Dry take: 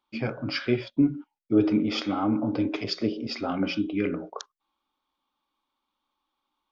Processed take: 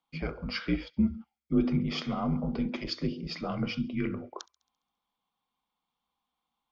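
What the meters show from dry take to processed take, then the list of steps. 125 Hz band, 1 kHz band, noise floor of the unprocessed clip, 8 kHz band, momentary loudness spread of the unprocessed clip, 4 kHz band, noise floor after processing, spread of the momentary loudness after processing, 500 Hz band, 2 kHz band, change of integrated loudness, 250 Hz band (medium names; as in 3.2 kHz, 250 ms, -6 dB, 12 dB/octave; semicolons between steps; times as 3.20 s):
0.0 dB, -5.5 dB, -82 dBFS, no reading, 11 LU, -4.5 dB, under -85 dBFS, 11 LU, -8.0 dB, -4.5 dB, -4.5 dB, -5.0 dB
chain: feedback echo behind a high-pass 68 ms, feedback 56%, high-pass 2.6 kHz, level -22 dB; frequency shift -67 Hz; trim -4.5 dB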